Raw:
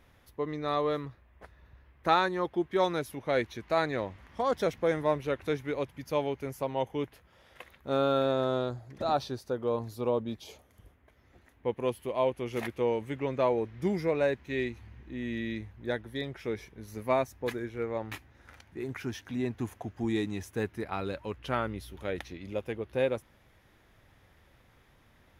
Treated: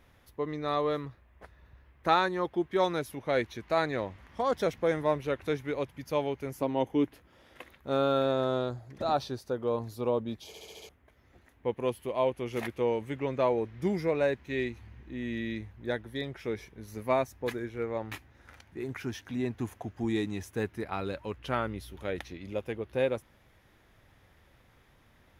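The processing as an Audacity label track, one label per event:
6.520000	7.740000	parametric band 290 Hz +9.5 dB 0.66 octaves
10.470000	10.470000	stutter in place 0.07 s, 6 plays

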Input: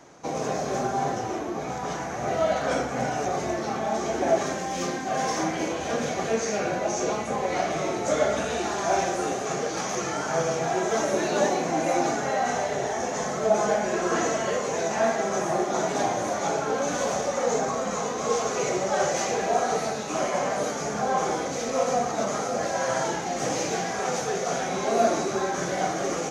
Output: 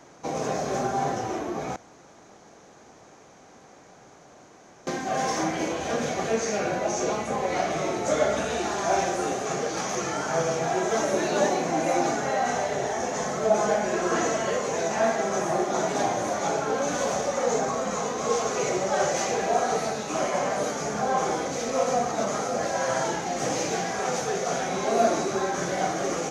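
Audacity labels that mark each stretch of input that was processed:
1.760000	4.870000	fill with room tone

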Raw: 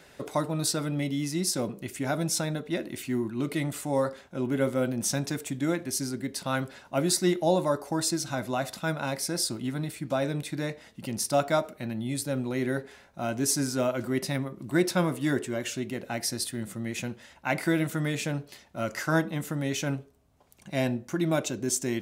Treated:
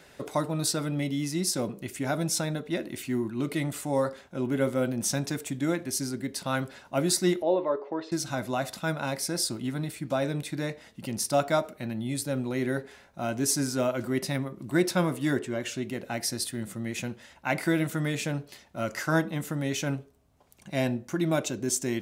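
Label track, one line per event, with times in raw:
7.420000	8.120000	loudspeaker in its box 390–2,800 Hz, peaks and dips at 410 Hz +9 dB, 780 Hz −6 dB, 1,500 Hz −8 dB, 2,400 Hz −3 dB
15.370000	15.830000	low-pass filter 4,200 Hz → 8,900 Hz 6 dB per octave

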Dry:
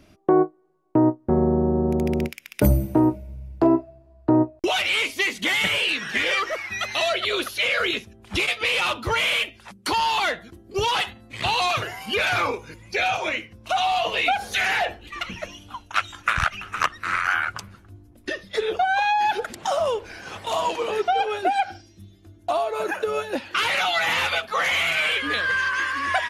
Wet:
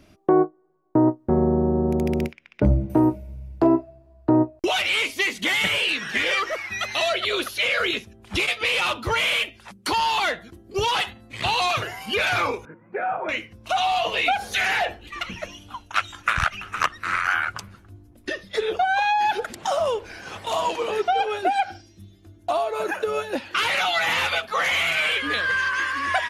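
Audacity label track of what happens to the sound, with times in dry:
0.440000	1.080000	low-pass filter 1,900 Hz 24 dB per octave
2.320000	2.900000	head-to-tape spacing loss at 10 kHz 34 dB
12.650000	13.290000	elliptic band-pass filter 150–1,500 Hz, stop band 50 dB

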